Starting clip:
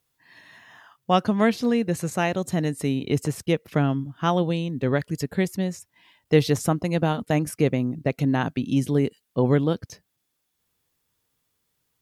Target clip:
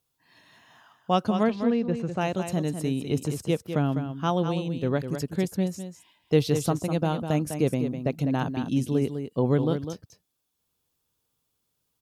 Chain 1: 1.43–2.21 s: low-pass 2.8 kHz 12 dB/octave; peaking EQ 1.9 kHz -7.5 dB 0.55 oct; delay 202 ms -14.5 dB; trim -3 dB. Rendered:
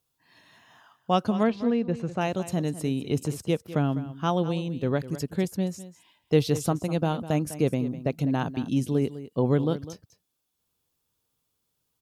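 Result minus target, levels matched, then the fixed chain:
echo-to-direct -6 dB
1.43–2.21 s: low-pass 2.8 kHz 12 dB/octave; peaking EQ 1.9 kHz -7.5 dB 0.55 oct; delay 202 ms -8.5 dB; trim -3 dB

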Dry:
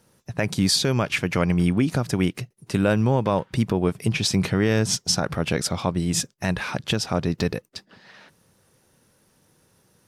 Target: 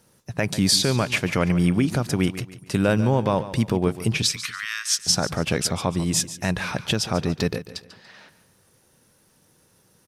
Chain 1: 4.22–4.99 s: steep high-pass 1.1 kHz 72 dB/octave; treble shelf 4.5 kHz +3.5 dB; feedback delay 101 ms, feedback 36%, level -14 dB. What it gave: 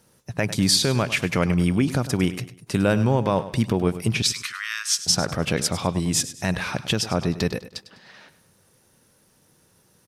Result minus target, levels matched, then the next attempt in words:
echo 42 ms early
4.22–4.99 s: steep high-pass 1.1 kHz 72 dB/octave; treble shelf 4.5 kHz +3.5 dB; feedback delay 143 ms, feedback 36%, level -14 dB

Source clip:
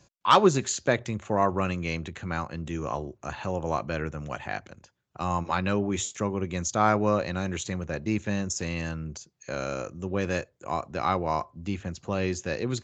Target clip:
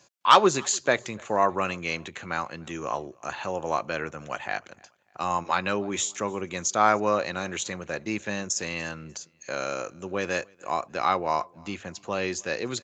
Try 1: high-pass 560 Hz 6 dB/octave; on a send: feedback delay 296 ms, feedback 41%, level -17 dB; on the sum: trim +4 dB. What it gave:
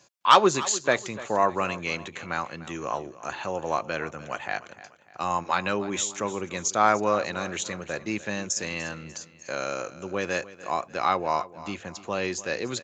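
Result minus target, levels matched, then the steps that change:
echo-to-direct +11 dB
change: feedback delay 296 ms, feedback 41%, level -28 dB

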